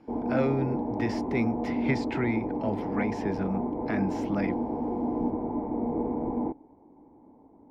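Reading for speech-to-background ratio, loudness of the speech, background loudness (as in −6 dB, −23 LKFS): −1.0 dB, −32.0 LKFS, −31.0 LKFS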